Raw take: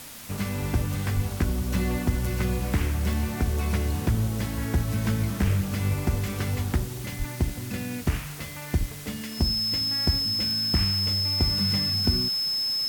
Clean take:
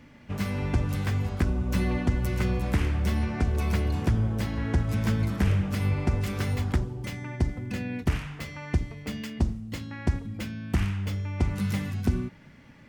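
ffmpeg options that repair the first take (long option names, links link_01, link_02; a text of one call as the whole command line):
ffmpeg -i in.wav -filter_complex "[0:a]adeclick=threshold=4,bandreject=frequency=5200:width=30,asplit=3[link_01][link_02][link_03];[link_01]afade=type=out:start_time=1.15:duration=0.02[link_04];[link_02]highpass=frequency=140:width=0.5412,highpass=frequency=140:width=1.3066,afade=type=in:start_time=1.15:duration=0.02,afade=type=out:start_time=1.27:duration=0.02[link_05];[link_03]afade=type=in:start_time=1.27:duration=0.02[link_06];[link_04][link_05][link_06]amix=inputs=3:normalize=0,asplit=3[link_07][link_08][link_09];[link_07]afade=type=out:start_time=7.18:duration=0.02[link_10];[link_08]highpass=frequency=140:width=0.5412,highpass=frequency=140:width=1.3066,afade=type=in:start_time=7.18:duration=0.02,afade=type=out:start_time=7.3:duration=0.02[link_11];[link_09]afade=type=in:start_time=7.3:duration=0.02[link_12];[link_10][link_11][link_12]amix=inputs=3:normalize=0,asplit=3[link_13][link_14][link_15];[link_13]afade=type=out:start_time=8.79:duration=0.02[link_16];[link_14]highpass=frequency=140:width=0.5412,highpass=frequency=140:width=1.3066,afade=type=in:start_time=8.79:duration=0.02,afade=type=out:start_time=8.91:duration=0.02[link_17];[link_15]afade=type=in:start_time=8.91:duration=0.02[link_18];[link_16][link_17][link_18]amix=inputs=3:normalize=0,afwtdn=0.0079" out.wav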